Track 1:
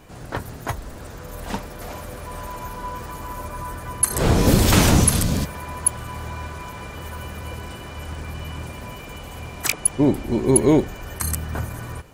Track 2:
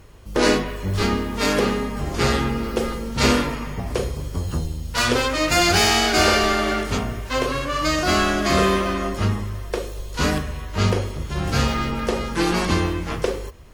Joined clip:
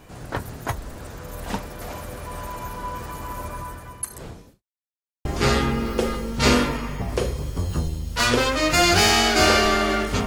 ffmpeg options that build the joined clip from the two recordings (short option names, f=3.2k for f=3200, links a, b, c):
-filter_complex "[0:a]apad=whole_dur=10.26,atrim=end=10.26,asplit=2[a][b];[a]atrim=end=4.63,asetpts=PTS-STARTPTS,afade=t=out:st=3.51:d=1.12:c=qua[c];[b]atrim=start=4.63:end=5.25,asetpts=PTS-STARTPTS,volume=0[d];[1:a]atrim=start=2.03:end=7.04,asetpts=PTS-STARTPTS,afade=t=in:d=0.004:c=hsin[e];[c][d][e]concat=n=3:v=0:a=1"